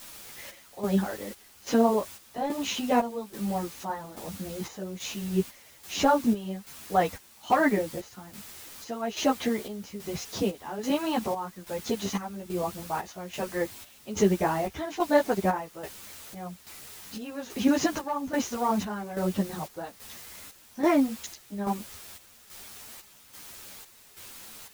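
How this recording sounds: a quantiser's noise floor 8-bit, dither triangular; chopped level 1.2 Hz, depth 65%, duty 60%; a shimmering, thickened sound

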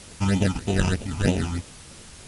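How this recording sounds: aliases and images of a low sample rate 1.1 kHz, jitter 0%; phasing stages 8, 3.2 Hz, lowest notch 500–1600 Hz; a quantiser's noise floor 8-bit, dither triangular; MP2

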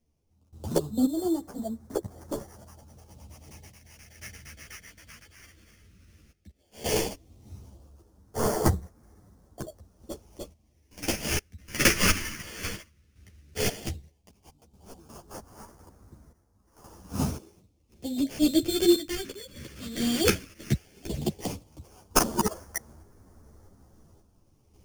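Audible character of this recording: aliases and images of a low sample rate 3.9 kHz, jitter 0%; phasing stages 2, 0.14 Hz, lowest notch 770–2500 Hz; random-step tremolo 1.9 Hz, depth 90%; a shimmering, thickened sound

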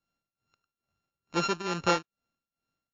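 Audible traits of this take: a buzz of ramps at a fixed pitch in blocks of 32 samples; tremolo triangle 2.3 Hz, depth 85%; MP3

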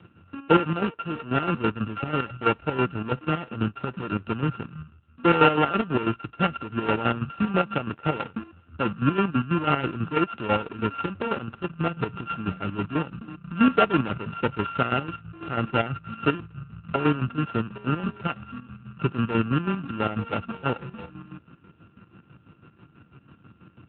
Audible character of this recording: a buzz of ramps at a fixed pitch in blocks of 32 samples; chopped level 6.1 Hz, depth 65%, duty 45%; AMR-NB

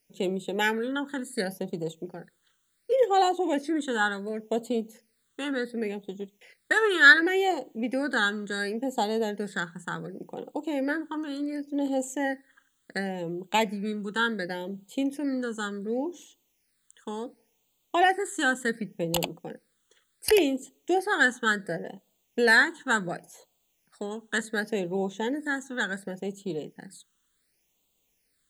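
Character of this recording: a quantiser's noise floor 12-bit, dither triangular; phasing stages 8, 0.69 Hz, lowest notch 670–1700 Hz

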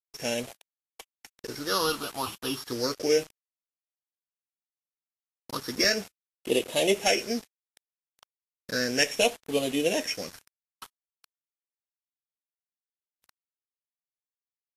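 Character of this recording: a buzz of ramps at a fixed pitch in blocks of 8 samples; phasing stages 6, 0.34 Hz, lowest notch 510–1500 Hz; a quantiser's noise floor 8-bit, dither none; Vorbis

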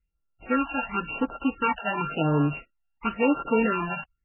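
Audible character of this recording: a buzz of ramps at a fixed pitch in blocks of 32 samples; phasing stages 12, 0.95 Hz, lowest notch 370–2400 Hz; MP3

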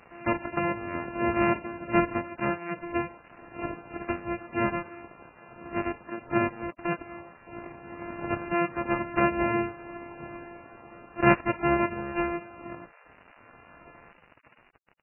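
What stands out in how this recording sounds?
a buzz of ramps at a fixed pitch in blocks of 128 samples; random-step tremolo 1.7 Hz; a quantiser's noise floor 8-bit, dither none; MP3

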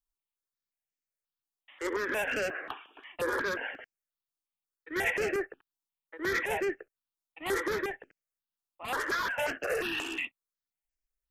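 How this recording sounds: notches that jump at a steady rate 5.6 Hz 540–3600 Hz

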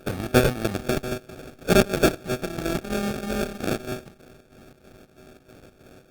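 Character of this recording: a buzz of ramps at a fixed pitch in blocks of 32 samples; chopped level 3.1 Hz, depth 60%, duty 65%; aliases and images of a low sample rate 1 kHz, jitter 0%; Opus

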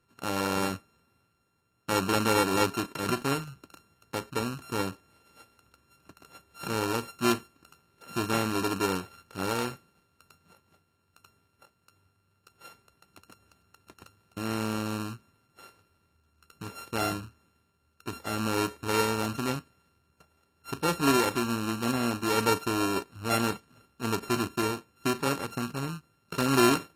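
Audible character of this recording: a buzz of ramps at a fixed pitch in blocks of 32 samples; AAC

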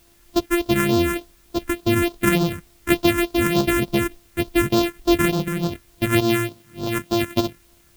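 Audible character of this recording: a buzz of ramps at a fixed pitch in blocks of 128 samples; phasing stages 4, 3.4 Hz, lowest notch 700–2000 Hz; a quantiser's noise floor 10-bit, dither triangular

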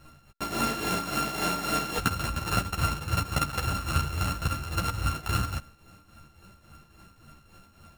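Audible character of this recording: a buzz of ramps at a fixed pitch in blocks of 32 samples; tremolo triangle 3.6 Hz, depth 70%; a shimmering, thickened sound

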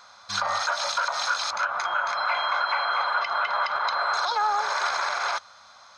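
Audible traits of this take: noise floor -51 dBFS; spectral tilt +1.0 dB/octave

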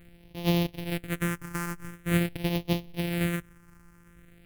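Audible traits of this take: a buzz of ramps at a fixed pitch in blocks of 256 samples; phasing stages 4, 0.46 Hz, lowest notch 610–1400 Hz

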